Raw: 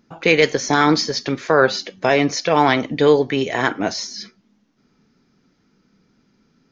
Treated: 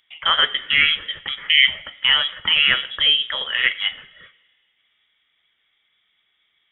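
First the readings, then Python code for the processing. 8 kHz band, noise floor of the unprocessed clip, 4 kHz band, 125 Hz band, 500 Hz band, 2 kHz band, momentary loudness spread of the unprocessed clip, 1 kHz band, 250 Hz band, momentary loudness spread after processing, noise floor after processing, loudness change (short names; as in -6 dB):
n/a, -63 dBFS, +10.5 dB, under -15 dB, -23.5 dB, +2.5 dB, 8 LU, -10.0 dB, -26.0 dB, 9 LU, -68 dBFS, +0.5 dB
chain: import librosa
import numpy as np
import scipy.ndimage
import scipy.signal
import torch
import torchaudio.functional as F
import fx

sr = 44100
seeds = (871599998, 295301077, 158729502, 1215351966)

y = fx.graphic_eq_15(x, sr, hz=(160, 630, 1600), db=(-11, 7, 10))
y = fx.freq_invert(y, sr, carrier_hz=3600)
y = fx.rev_double_slope(y, sr, seeds[0], early_s=0.77, late_s=2.4, knee_db=-17, drr_db=15.5)
y = y * librosa.db_to_amplitude(-6.0)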